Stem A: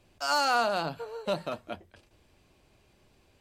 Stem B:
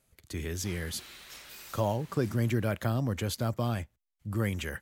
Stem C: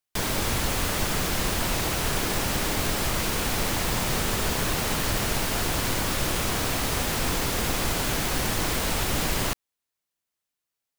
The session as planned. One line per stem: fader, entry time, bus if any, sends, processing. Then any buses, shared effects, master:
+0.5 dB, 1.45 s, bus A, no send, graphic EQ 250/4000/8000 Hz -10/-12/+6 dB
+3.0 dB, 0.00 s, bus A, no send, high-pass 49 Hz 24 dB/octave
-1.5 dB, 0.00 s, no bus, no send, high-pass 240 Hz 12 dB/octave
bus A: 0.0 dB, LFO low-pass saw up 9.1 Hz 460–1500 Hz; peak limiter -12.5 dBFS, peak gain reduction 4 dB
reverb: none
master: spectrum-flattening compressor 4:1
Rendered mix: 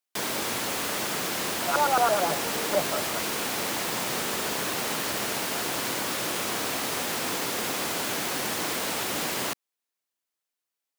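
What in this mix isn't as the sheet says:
stem B: muted; master: missing spectrum-flattening compressor 4:1

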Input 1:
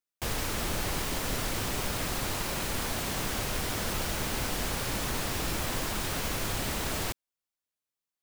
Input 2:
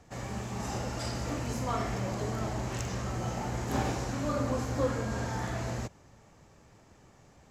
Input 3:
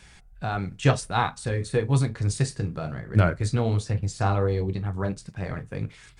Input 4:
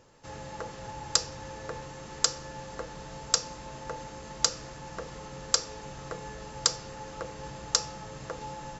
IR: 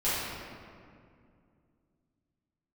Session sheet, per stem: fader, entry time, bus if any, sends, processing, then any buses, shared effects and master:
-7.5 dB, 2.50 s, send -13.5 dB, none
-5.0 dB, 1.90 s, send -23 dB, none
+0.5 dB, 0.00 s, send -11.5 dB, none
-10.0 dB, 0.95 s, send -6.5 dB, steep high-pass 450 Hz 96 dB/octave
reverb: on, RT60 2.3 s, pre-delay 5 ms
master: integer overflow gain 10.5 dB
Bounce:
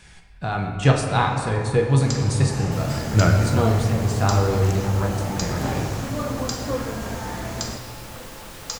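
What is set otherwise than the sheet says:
stem 1: send off; stem 2 -5.0 dB -> +3.0 dB; master: missing integer overflow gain 10.5 dB

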